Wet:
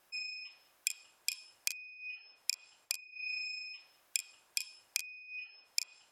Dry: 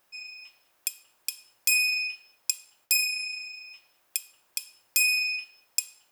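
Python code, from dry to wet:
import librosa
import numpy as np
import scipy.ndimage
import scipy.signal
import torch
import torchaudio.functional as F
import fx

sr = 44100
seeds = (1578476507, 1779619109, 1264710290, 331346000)

p1 = fx.env_lowpass_down(x, sr, base_hz=650.0, full_db=-23.5)
p2 = fx.spec_gate(p1, sr, threshold_db=-30, keep='strong')
y = p2 + fx.room_early_taps(p2, sr, ms=(33, 44), db=(-9.5, -17.0), dry=0)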